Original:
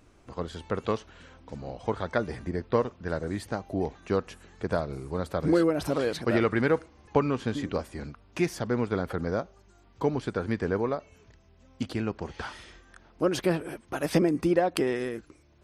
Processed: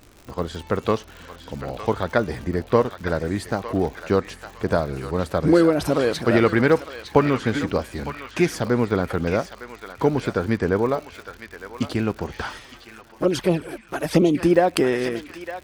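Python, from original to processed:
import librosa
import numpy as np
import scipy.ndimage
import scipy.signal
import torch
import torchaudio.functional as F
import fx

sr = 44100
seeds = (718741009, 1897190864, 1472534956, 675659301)

y = fx.echo_banded(x, sr, ms=908, feedback_pct=46, hz=2600.0, wet_db=-6.5)
y = fx.dmg_crackle(y, sr, seeds[0], per_s=140.0, level_db=-41.0)
y = fx.env_flanger(y, sr, rest_ms=10.8, full_db=-20.0, at=(12.58, 14.39), fade=0.02)
y = y * 10.0 ** (7.0 / 20.0)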